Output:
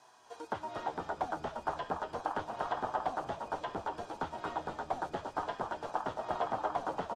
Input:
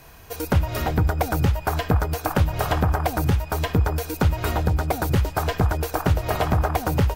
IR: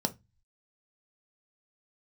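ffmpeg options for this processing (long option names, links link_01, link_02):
-filter_complex "[0:a]equalizer=frequency=2700:width_type=o:width=1.3:gain=-10.5,flanger=delay=7.9:depth=4.5:regen=52:speed=0.33:shape=sinusoidal,highpass=480,equalizer=frequency=510:width_type=q:width=4:gain=-8,equalizer=frequency=910:width_type=q:width=4:gain=5,equalizer=frequency=2200:width_type=q:width=4:gain=-4,equalizer=frequency=3300:width_type=q:width=4:gain=7,lowpass=frequency=7900:width=0.5412,lowpass=frequency=7900:width=1.3066,asplit=2[link_01][link_02];[link_02]asplit=8[link_03][link_04][link_05][link_06][link_07][link_08][link_09][link_10];[link_03]adelay=237,afreqshift=-88,volume=-7.5dB[link_11];[link_04]adelay=474,afreqshift=-176,volume=-11.9dB[link_12];[link_05]adelay=711,afreqshift=-264,volume=-16.4dB[link_13];[link_06]adelay=948,afreqshift=-352,volume=-20.8dB[link_14];[link_07]adelay=1185,afreqshift=-440,volume=-25.2dB[link_15];[link_08]adelay=1422,afreqshift=-528,volume=-29.7dB[link_16];[link_09]adelay=1659,afreqshift=-616,volume=-34.1dB[link_17];[link_10]adelay=1896,afreqshift=-704,volume=-38.6dB[link_18];[link_11][link_12][link_13][link_14][link_15][link_16][link_17][link_18]amix=inputs=8:normalize=0[link_19];[link_01][link_19]amix=inputs=2:normalize=0,acrossover=split=3300[link_20][link_21];[link_21]acompressor=threshold=-59dB:ratio=4:attack=1:release=60[link_22];[link_20][link_22]amix=inputs=2:normalize=0,volume=-4dB"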